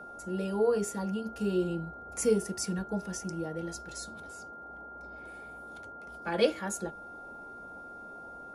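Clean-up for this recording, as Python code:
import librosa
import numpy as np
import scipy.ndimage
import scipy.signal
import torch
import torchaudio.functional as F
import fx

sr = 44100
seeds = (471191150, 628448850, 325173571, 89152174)

y = fx.fix_declick_ar(x, sr, threshold=6.5)
y = fx.notch(y, sr, hz=1400.0, q=30.0)
y = fx.noise_reduce(y, sr, print_start_s=4.45, print_end_s=4.95, reduce_db=30.0)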